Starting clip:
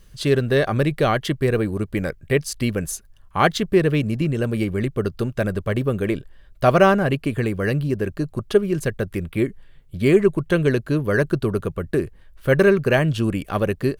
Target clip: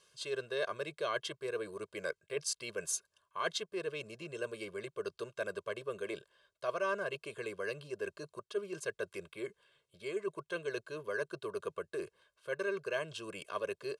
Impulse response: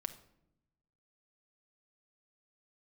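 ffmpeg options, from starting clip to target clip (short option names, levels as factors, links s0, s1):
-af "areverse,acompressor=threshold=0.0631:ratio=6,areverse,highpass=480,equalizer=f=530:t=q:w=4:g=-5,equalizer=f=820:t=q:w=4:g=-6,equalizer=f=1900:t=q:w=4:g=-10,lowpass=f=9600:w=0.5412,lowpass=f=9600:w=1.3066,aecho=1:1:1.9:0.89,volume=0.501"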